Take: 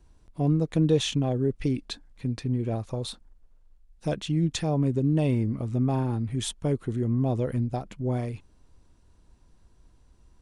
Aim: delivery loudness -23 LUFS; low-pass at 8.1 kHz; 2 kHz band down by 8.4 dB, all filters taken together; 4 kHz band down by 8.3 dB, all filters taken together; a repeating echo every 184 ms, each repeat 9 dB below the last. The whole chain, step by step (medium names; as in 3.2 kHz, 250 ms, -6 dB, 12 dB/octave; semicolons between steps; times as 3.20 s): low-pass 8.1 kHz; peaking EQ 2 kHz -9 dB; peaking EQ 4 kHz -7 dB; feedback delay 184 ms, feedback 35%, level -9 dB; trim +4 dB